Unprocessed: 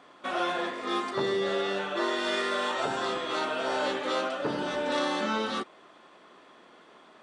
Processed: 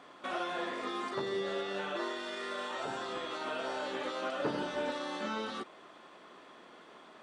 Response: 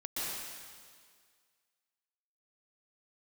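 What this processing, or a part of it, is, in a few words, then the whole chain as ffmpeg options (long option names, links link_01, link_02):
de-esser from a sidechain: -filter_complex "[0:a]asplit=2[link_01][link_02];[link_02]highpass=6000,apad=whole_len=318727[link_03];[link_01][link_03]sidechaincompress=threshold=-54dB:ratio=4:attack=0.99:release=57"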